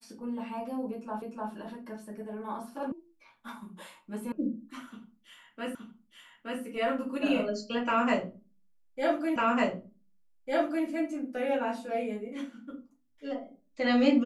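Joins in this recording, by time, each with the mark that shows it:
1.22 s: repeat of the last 0.3 s
2.92 s: sound stops dead
4.32 s: sound stops dead
5.75 s: repeat of the last 0.87 s
9.36 s: repeat of the last 1.5 s

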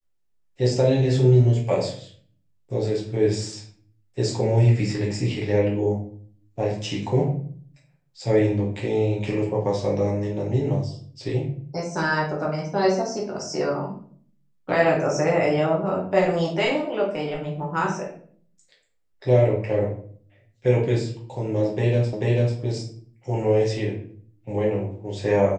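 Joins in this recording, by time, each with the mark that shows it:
22.13 s: repeat of the last 0.44 s

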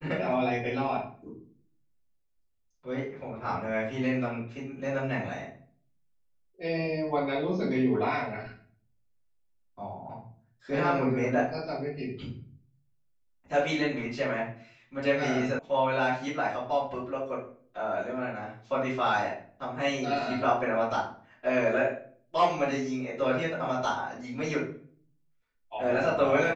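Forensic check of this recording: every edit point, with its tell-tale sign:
15.59 s: sound stops dead

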